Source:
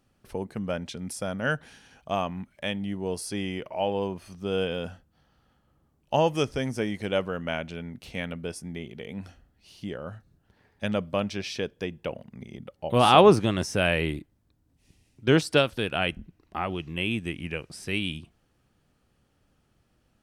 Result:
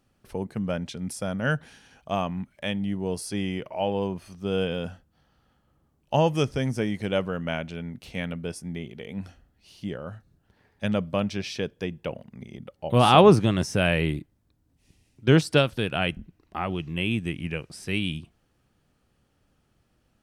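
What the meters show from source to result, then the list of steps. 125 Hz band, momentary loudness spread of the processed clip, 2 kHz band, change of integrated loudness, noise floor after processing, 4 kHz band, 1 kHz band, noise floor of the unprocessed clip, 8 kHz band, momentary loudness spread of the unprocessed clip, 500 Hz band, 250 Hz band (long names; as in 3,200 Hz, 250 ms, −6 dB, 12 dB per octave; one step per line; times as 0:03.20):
+5.0 dB, 16 LU, 0.0 dB, +1.5 dB, −69 dBFS, 0.0 dB, 0.0 dB, −69 dBFS, 0.0 dB, 15 LU, +0.5 dB, +3.0 dB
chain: dynamic equaliser 140 Hz, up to +6 dB, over −41 dBFS, Q 1.1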